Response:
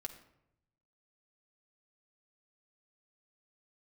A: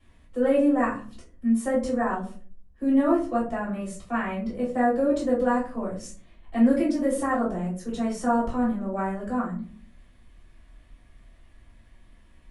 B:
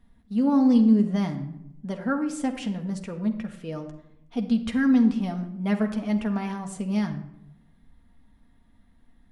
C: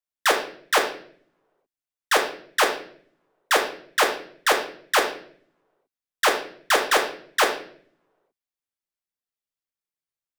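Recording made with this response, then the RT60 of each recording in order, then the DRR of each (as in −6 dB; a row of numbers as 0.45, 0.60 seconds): B; 0.45, 0.80, 0.55 seconds; −8.0, 3.5, 0.5 decibels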